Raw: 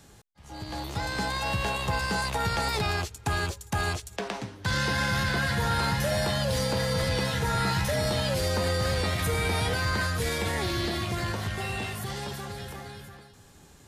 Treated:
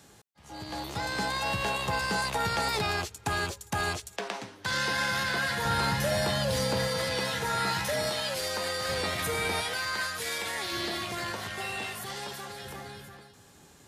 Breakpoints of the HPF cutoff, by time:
HPF 6 dB/oct
170 Hz
from 4.12 s 440 Hz
from 5.65 s 120 Hz
from 6.88 s 380 Hz
from 8.1 s 840 Hz
from 8.89 s 330 Hz
from 9.61 s 1100 Hz
from 10.72 s 480 Hz
from 12.65 s 150 Hz

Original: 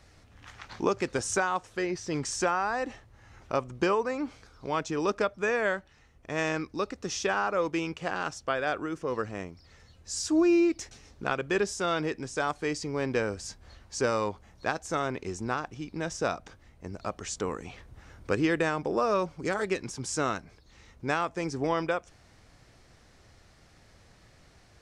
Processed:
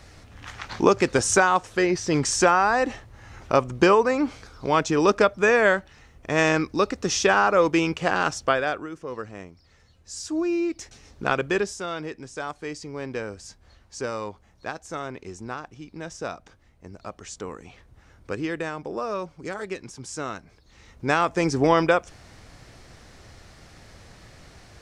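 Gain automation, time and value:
8.48 s +9 dB
8.9 s -2.5 dB
10.58 s -2.5 dB
11.38 s +7 dB
11.87 s -3 dB
20.28 s -3 dB
21.38 s +9.5 dB

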